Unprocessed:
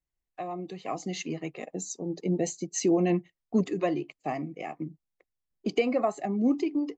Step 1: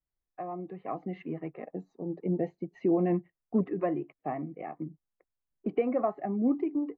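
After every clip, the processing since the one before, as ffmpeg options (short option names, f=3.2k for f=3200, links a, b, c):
-af "lowpass=f=1.8k:w=0.5412,lowpass=f=1.8k:w=1.3066,volume=-2dB"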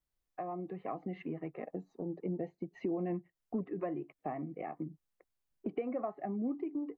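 -af "acompressor=threshold=-41dB:ratio=2.5,volume=2.5dB"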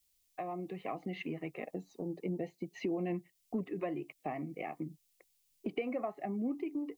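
-af "aexciter=amount=3.5:drive=7.7:freq=2.2k"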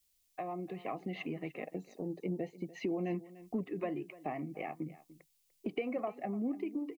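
-af "aecho=1:1:295:0.126"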